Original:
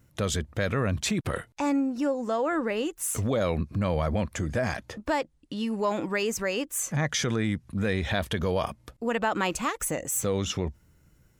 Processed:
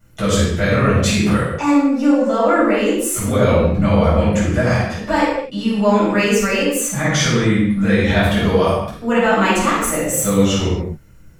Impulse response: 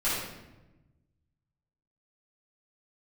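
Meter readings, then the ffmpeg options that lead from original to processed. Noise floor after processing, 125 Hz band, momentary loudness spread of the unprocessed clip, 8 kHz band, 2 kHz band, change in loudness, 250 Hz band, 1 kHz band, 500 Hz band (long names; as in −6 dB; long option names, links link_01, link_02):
−40 dBFS, +12.0 dB, 4 LU, +9.5 dB, +12.0 dB, +12.0 dB, +13.5 dB, +12.0 dB, +12.0 dB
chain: -filter_complex "[1:a]atrim=start_sample=2205,afade=type=out:start_time=0.34:duration=0.01,atrim=end_sample=15435[link_01];[0:a][link_01]afir=irnorm=-1:irlink=0,volume=1.5dB"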